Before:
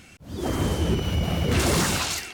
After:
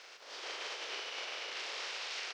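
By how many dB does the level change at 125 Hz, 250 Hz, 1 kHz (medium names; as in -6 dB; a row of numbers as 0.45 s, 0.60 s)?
under -40 dB, -36.5 dB, -15.0 dB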